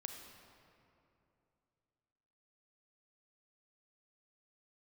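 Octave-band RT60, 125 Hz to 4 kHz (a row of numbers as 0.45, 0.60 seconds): 3.2, 3.1, 2.9, 2.6, 2.2, 1.6 seconds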